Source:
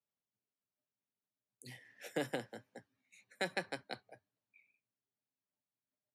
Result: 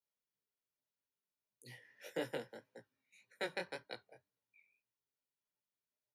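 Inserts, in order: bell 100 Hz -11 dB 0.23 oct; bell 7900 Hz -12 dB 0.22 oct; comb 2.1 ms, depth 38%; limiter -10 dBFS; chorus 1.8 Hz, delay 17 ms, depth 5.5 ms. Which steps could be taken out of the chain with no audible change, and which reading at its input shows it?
limiter -10 dBFS: input peak -21.5 dBFS

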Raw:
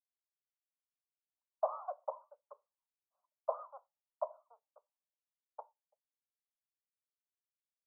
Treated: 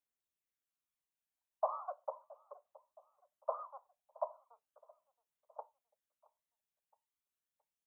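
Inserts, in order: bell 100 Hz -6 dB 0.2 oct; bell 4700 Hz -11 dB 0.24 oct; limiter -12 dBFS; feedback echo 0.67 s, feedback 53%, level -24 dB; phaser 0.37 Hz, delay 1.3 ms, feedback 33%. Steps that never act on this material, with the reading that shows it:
bell 100 Hz: input band starts at 430 Hz; bell 4700 Hz: input band ends at 1400 Hz; limiter -12 dBFS: input peak -19.0 dBFS

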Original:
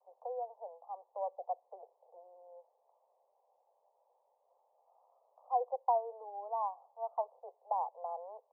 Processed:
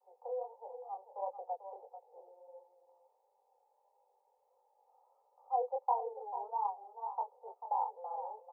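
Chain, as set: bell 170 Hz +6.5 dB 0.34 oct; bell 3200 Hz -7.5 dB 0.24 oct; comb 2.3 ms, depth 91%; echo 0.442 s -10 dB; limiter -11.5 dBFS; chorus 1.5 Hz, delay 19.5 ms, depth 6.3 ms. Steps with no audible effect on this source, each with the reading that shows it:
bell 170 Hz: input band starts at 400 Hz; bell 3200 Hz: input band ends at 1100 Hz; limiter -11.5 dBFS: input peak -16.5 dBFS

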